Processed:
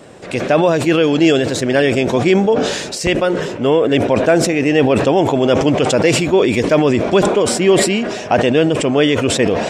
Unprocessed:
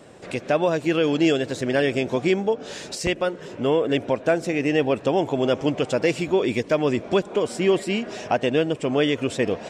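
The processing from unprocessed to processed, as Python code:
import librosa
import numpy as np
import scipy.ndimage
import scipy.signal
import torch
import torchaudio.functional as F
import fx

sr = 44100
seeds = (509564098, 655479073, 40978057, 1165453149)

y = fx.sustainer(x, sr, db_per_s=45.0)
y = y * librosa.db_to_amplitude(7.0)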